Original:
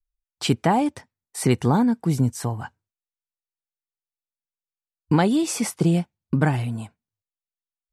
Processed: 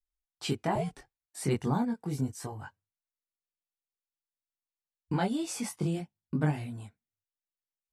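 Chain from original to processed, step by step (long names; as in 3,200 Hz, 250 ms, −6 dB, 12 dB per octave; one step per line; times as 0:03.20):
0:00.75–0:01.42: frequency shifter −120 Hz
multi-voice chorus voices 2, 0.32 Hz, delay 21 ms, depth 1.5 ms
level −7 dB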